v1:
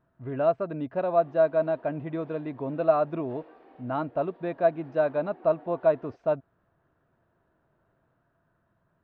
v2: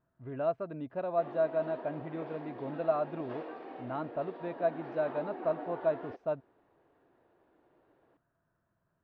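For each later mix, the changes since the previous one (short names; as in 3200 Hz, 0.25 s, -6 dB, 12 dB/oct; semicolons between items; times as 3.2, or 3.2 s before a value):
speech -7.5 dB; background +9.0 dB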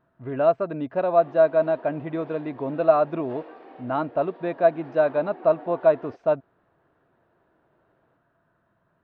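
speech +12.0 dB; master: add low shelf 130 Hz -8.5 dB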